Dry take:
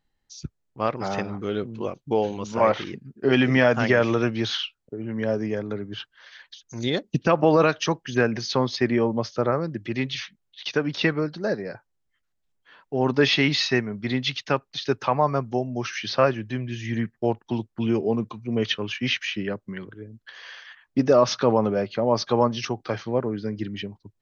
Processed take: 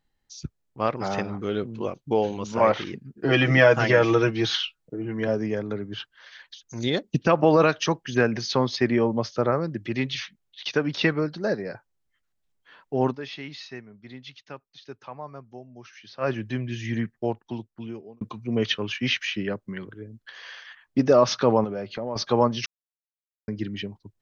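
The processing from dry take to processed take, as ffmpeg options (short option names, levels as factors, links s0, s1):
-filter_complex "[0:a]asettb=1/sr,asplit=3[s0][s1][s2];[s0]atrim=end=3.174[s3];[s1]atrim=start=3.17:end=5.28,asetpts=PTS-STARTPTS,afade=t=in:d=0.004:c=qsin,afade=t=out:st=2.106:d=0.004:c=qsin,aecho=1:1:6.2:0.74,atrim=end_sample=93051[s4];[s2]atrim=start=5.276[s5];[s3][s4]acrossfade=d=0.004:c1=hsin:c2=qsin[s6];[s6][s5]acrossfade=d=0.004:c1=qsin:c2=hsin,asettb=1/sr,asplit=3[s7][s8][s9];[s7]atrim=end=21.644[s10];[s8]atrim=start=21.64:end=22.16,asetpts=PTS-STARTPTS,afade=t=in:d=0.004:c=qsin,afade=t=out:st=0.516:d=0.004:c=qsin,acompressor=threshold=0.0355:ratio=3:attack=3.2:release=140:knee=1:detection=peak[s11];[s9]atrim=start=22.156[s12];[s10][s11]acrossfade=d=0.004:c1=hsin:c2=qsin[s13];[s13][s12]acrossfade=d=0.004:c1=qsin:c2=hsin,asplit=6[s14][s15][s16][s17][s18][s19];[s14]atrim=end=13.17,asetpts=PTS-STARTPTS,afade=t=out:st=13.05:d=0.12:silence=0.141254[s20];[s15]atrim=start=13.17:end=16.2,asetpts=PTS-STARTPTS,volume=0.141[s21];[s16]atrim=start=16.2:end=18.21,asetpts=PTS-STARTPTS,afade=t=in:d=0.12:silence=0.141254,afade=t=out:st=0.64:d=1.37[s22];[s17]atrim=start=18.21:end=22.66,asetpts=PTS-STARTPTS,afade=t=in:d=0.004:c=hsin,afade=t=out:st=4.446:d=0.004:c=hsin[s23];[s18]atrim=start=22.66:end=23.48,asetpts=PTS-STARTPTS,volume=0[s24];[s19]atrim=start=23.48,asetpts=PTS-STARTPTS,afade=t=in:d=0.004:c=hsin[s25];[s20][s21][s22][s23][s24][s25]concat=n=6:v=0:a=1"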